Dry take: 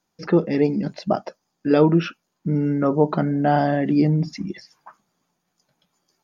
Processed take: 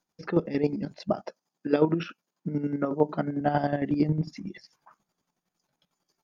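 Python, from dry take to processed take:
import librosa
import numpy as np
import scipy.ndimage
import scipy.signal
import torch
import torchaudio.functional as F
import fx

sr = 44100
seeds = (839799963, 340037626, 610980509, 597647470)

y = fx.chopper(x, sr, hz=11.0, depth_pct=60, duty_pct=35)
y = fx.highpass(y, sr, hz=150.0, slope=12, at=(1.27, 3.41))
y = y * 10.0 ** (-4.0 / 20.0)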